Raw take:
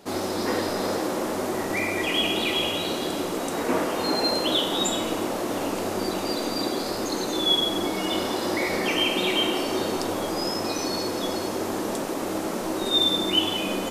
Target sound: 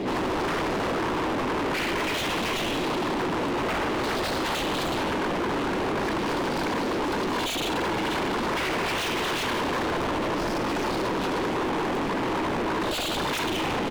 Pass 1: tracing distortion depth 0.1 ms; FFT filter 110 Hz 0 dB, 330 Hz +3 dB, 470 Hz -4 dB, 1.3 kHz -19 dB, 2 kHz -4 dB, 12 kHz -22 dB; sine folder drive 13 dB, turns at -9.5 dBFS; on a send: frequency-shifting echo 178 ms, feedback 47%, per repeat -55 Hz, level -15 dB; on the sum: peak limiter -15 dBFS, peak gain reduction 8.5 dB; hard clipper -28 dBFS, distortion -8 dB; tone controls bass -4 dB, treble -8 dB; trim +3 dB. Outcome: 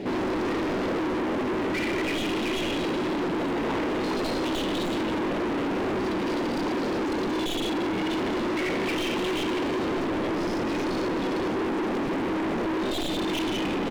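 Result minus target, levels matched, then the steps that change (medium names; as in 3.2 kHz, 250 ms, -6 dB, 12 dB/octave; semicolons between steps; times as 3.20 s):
sine folder: distortion -15 dB
change: sine folder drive 20 dB, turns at -9.5 dBFS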